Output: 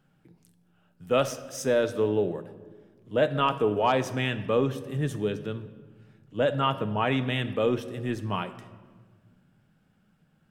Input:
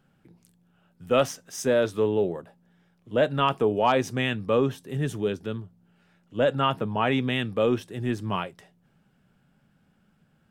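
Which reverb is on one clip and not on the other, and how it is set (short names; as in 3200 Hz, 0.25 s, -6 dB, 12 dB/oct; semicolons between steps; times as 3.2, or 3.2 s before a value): shoebox room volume 1700 m³, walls mixed, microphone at 0.52 m; gain -2 dB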